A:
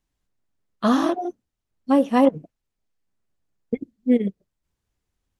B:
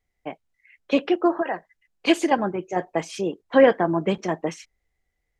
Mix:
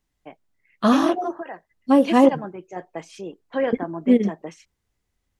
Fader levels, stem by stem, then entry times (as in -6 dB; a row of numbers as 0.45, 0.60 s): +2.0, -8.5 dB; 0.00, 0.00 s